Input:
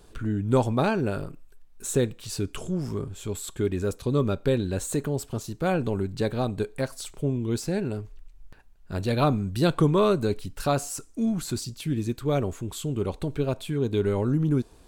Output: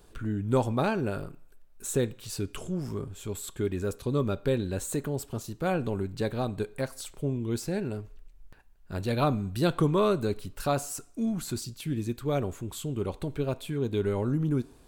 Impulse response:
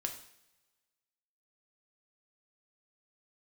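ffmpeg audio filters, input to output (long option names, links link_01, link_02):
-filter_complex "[0:a]highshelf=frequency=11000:gain=7,asplit=2[link_01][link_02];[1:a]atrim=start_sample=2205,lowpass=3900,lowshelf=frequency=450:gain=-9[link_03];[link_02][link_03]afir=irnorm=-1:irlink=0,volume=-10.5dB[link_04];[link_01][link_04]amix=inputs=2:normalize=0,volume=-4.5dB"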